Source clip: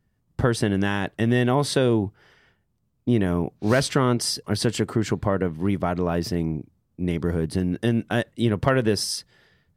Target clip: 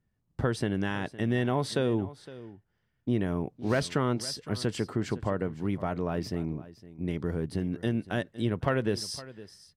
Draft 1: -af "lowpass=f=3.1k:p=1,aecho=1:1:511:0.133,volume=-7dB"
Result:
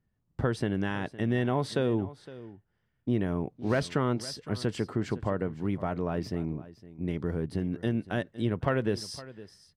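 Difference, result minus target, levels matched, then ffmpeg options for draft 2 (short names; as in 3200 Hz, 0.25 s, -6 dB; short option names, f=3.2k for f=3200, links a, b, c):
8000 Hz band -4.5 dB
-af "lowpass=f=6.4k:p=1,aecho=1:1:511:0.133,volume=-7dB"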